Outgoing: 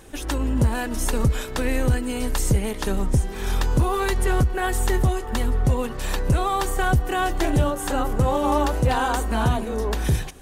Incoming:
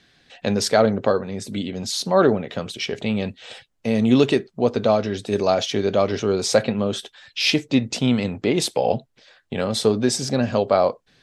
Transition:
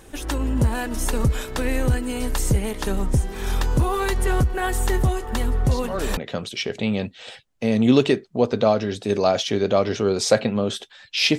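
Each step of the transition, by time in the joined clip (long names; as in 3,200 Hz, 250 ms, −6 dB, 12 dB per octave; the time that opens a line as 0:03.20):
outgoing
0:05.71: mix in incoming from 0:01.94 0.46 s −12.5 dB
0:06.17: continue with incoming from 0:02.40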